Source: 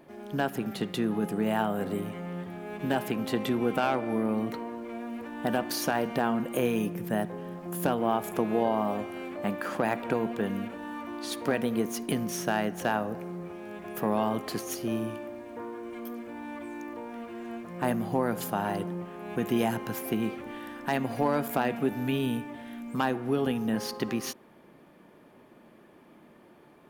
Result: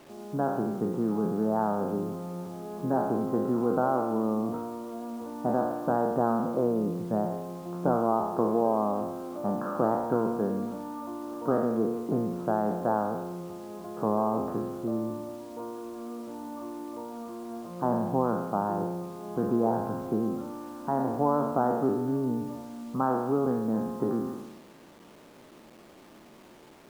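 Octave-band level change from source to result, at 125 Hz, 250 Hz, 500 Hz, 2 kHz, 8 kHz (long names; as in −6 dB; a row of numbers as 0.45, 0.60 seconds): +0.5 dB, +1.0 dB, +2.5 dB, −10.5 dB, below −10 dB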